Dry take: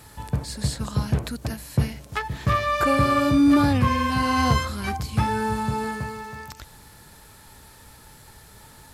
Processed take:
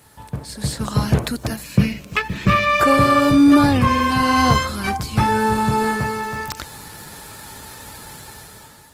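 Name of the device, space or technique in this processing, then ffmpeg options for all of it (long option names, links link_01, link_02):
video call: -filter_complex "[0:a]asettb=1/sr,asplit=3[link_01][link_02][link_03];[link_01]atrim=end=1.634[link_04];[link_02]atrim=start=1.63:end=2.8,asetpts=PTS-STARTPTS,afade=type=in:duration=0.004:curve=qsin,afade=type=out:start_time=1.166:duration=0.004:curve=qsin,equalizer=frequency=200:width_type=o:width=0.33:gain=11,equalizer=frequency=800:width_type=o:width=0.33:gain=-10,equalizer=frequency=2500:width_type=o:width=0.33:gain=10,equalizer=frequency=10000:width_type=o:width=0.33:gain=-9[link_05];[link_03]atrim=start=2.796[link_06];[link_04][link_05]acrossfade=duration=0.004:curve1=hsin:curve2=qsin[link_07];[link_07][link_06]acrossfade=duration=0.004:curve1=qsin:curve2=hsin,highpass=frequency=120:poles=1,dynaudnorm=framelen=290:gausssize=5:maxgain=13dB,volume=-1dB" -ar 48000 -c:a libopus -b:a 20k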